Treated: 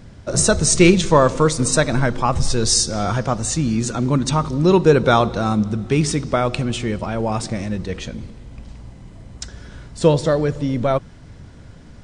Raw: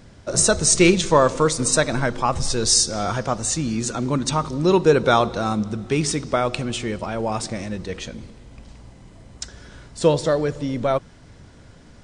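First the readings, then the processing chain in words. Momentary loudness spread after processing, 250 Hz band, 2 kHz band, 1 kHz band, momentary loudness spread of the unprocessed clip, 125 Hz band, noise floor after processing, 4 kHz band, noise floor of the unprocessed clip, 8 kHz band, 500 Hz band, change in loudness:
13 LU, +4.0 dB, +1.5 dB, +1.5 dB, 14 LU, +6.0 dB, -42 dBFS, +0.5 dB, -47 dBFS, -0.5 dB, +2.0 dB, +2.0 dB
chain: tone controls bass +5 dB, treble -2 dB; trim +1.5 dB

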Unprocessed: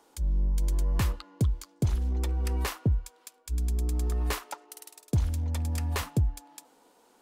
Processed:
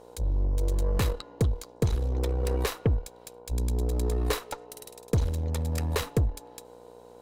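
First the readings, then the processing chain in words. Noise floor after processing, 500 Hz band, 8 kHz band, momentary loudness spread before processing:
-51 dBFS, +9.5 dB, +1.0 dB, 12 LU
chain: mains buzz 60 Hz, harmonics 17, -55 dBFS 0 dB/octave; small resonant body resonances 470/3900 Hz, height 13 dB, ringing for 35 ms; Chebyshev shaper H 8 -21 dB, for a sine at -13 dBFS

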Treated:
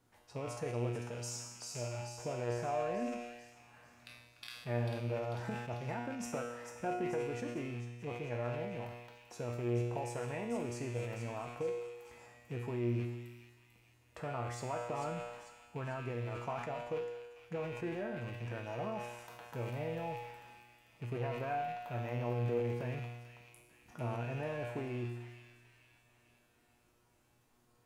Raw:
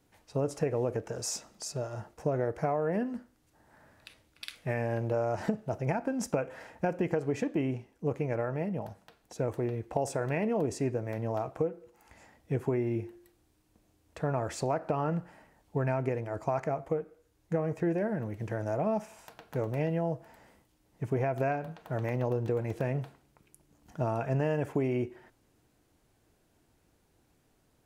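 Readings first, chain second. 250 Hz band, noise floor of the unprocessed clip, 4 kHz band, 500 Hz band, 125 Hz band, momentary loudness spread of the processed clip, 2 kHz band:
-8.5 dB, -70 dBFS, -2.5 dB, -7.5 dB, -5.5 dB, 16 LU, -4.0 dB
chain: rattle on loud lows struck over -42 dBFS, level -34 dBFS; in parallel at +3 dB: compression, threshold -44 dBFS, peak gain reduction 18.5 dB; on the sum: peaking EQ 1.1 kHz +5 dB 0.92 oct; feedback comb 120 Hz, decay 1.2 s, harmonics all, mix 90%; on a send: feedback echo behind a high-pass 444 ms, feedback 51%, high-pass 2.4 kHz, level -6 dB; on the sum: decay stretcher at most 51 dB/s; trim +3.5 dB

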